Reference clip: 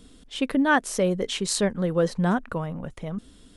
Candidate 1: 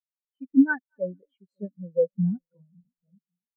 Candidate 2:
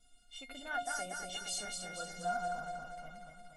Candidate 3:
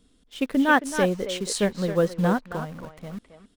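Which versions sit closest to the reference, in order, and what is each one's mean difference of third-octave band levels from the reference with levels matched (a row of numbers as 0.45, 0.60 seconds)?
3, 2, 1; 6.0, 11.0, 18.0 decibels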